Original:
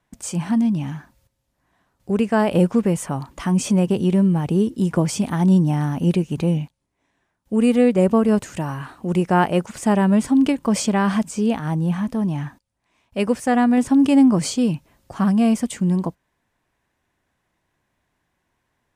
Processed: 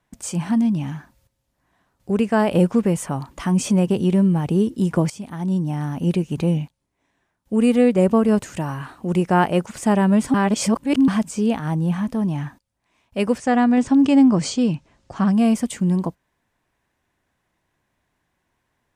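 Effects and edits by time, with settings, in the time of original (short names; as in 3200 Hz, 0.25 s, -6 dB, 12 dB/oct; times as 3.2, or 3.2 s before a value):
5.1–6.4 fade in, from -14 dB
10.34–11.08 reverse
13.38–15.33 LPF 7700 Hz 24 dB/oct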